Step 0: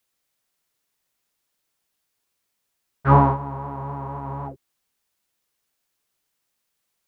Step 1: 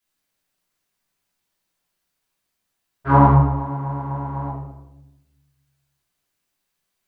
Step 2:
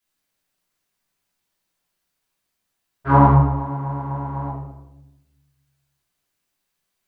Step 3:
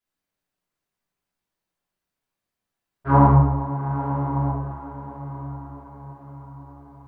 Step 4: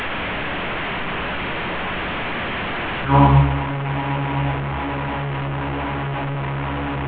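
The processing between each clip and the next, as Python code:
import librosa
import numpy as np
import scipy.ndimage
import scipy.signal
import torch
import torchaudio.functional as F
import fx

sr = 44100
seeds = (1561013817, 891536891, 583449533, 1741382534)

y1 = fx.room_shoebox(x, sr, seeds[0], volume_m3=340.0, walls='mixed', distance_m=3.0)
y1 = y1 * librosa.db_to_amplitude(-7.5)
y2 = y1
y3 = fx.high_shelf(y2, sr, hz=2000.0, db=-8.5)
y3 = fx.rider(y3, sr, range_db=3, speed_s=2.0)
y3 = fx.echo_diffused(y3, sr, ms=903, feedback_pct=50, wet_db=-12.5)
y4 = fx.delta_mod(y3, sr, bps=16000, step_db=-19.5)
y4 = y4 * librosa.db_to_amplitude(1.5)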